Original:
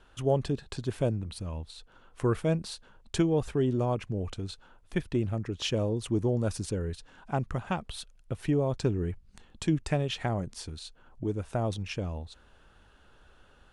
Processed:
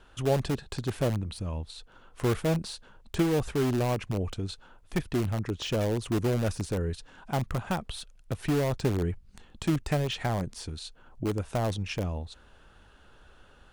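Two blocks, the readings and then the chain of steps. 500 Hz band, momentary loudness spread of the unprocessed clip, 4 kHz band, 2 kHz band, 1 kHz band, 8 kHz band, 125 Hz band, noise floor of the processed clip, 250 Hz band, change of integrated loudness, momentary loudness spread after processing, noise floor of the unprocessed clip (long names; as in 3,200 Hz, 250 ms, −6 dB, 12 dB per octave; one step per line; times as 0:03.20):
+0.5 dB, 14 LU, +1.0 dB, +3.0 dB, +2.0 dB, +1.5 dB, +1.0 dB, −57 dBFS, +0.5 dB, +1.0 dB, 12 LU, −59 dBFS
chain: de-essing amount 95%
in parallel at −8.5 dB: wrap-around overflow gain 24 dB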